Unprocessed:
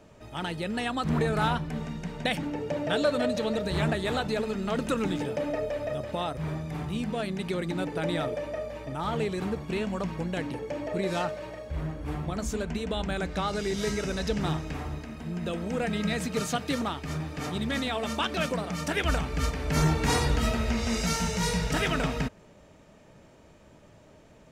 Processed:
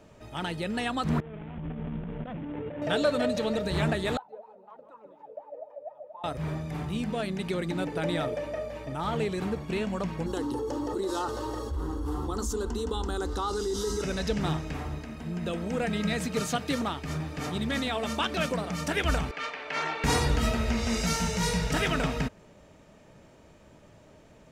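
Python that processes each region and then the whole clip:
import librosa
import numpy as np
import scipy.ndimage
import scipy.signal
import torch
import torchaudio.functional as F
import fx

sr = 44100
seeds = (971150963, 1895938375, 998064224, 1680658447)

y = fx.chain(x, sr, fx.median_filter(points=41),
    fx.cheby1_lowpass(hz=3400.0, order=6),
    fx.over_compress(threshold_db=-37.0, ratio=-1.0), at=(1.2, 2.82))
y = fx.chain(y, sr, fx.wah_lfo(hz=4.1, low_hz=490.0, high_hz=1000.0, q=19.0),
    fx.echo_feedback(ms=150, feedback_pct=39, wet_db=-13), at=(4.17, 6.24))
y = fx.chain(y, sr, fx.peak_eq(hz=1700.0, db=-8.5, octaves=0.45),
    fx.fixed_phaser(hz=630.0, stages=6),
    fx.env_flatten(amount_pct=70), at=(10.26, 14.02))
y = fx.chain(y, sr, fx.dynamic_eq(hz=2600.0, q=1.1, threshold_db=-46.0, ratio=4.0, max_db=5),
    fx.bandpass_edges(low_hz=630.0, high_hz=3300.0), at=(19.31, 20.04))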